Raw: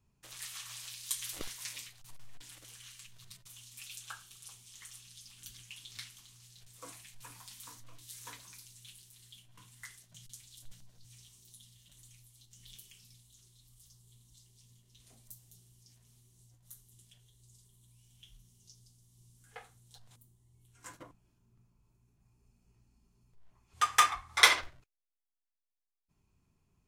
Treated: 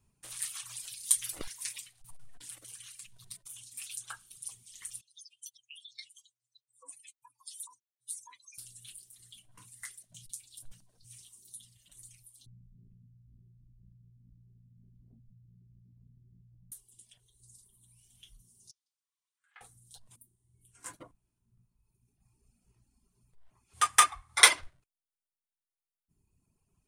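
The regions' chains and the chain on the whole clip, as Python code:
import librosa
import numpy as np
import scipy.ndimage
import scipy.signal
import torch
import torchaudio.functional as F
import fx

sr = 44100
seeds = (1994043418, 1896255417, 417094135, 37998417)

y = fx.chain(x, sr, fx.spec_expand(power=3.0),
    fx.highpass(hz=1000.0, slope=12),
    fx.peak_eq(hz=1500.0, db=-15.0, octaves=0.7), at=(5.01, 8.58))
y = fx.chain(y, sr, fx.lowpass_res(hz=180.0, q=1.7),
    fx.env_flatten(amount_pct=100), at=(12.46, 16.72))
y = fx.chain(y, sr, fx.highpass(hz=1200.0, slope=24),
    fx.spacing_loss(db_at_10k=28), at=(18.71, 19.61))
y = fx.dereverb_blind(y, sr, rt60_s=1.9)
y = fx.peak_eq(y, sr, hz=9300.0, db=13.0, octaves=0.38)
y = F.gain(torch.from_numpy(y), 1.5).numpy()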